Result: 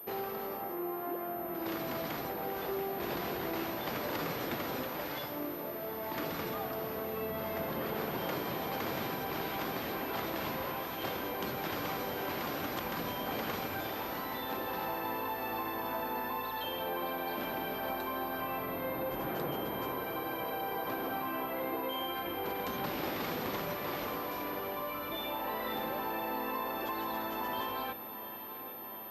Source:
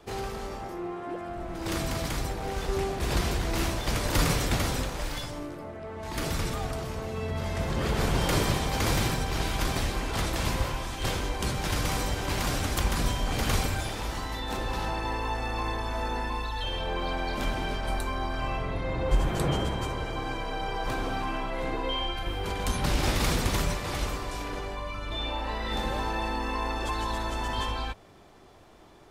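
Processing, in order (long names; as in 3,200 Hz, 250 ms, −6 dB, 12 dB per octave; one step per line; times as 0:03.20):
high-pass filter 240 Hz 12 dB per octave
high-shelf EQ 2,700 Hz −9 dB
downward compressor, threshold −33 dBFS, peak gain reduction 8 dB
on a send: feedback delay with all-pass diffusion 800 ms, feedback 72%, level −13 dB
on the sum: switching amplifier with a slow clock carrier 13,000 Hz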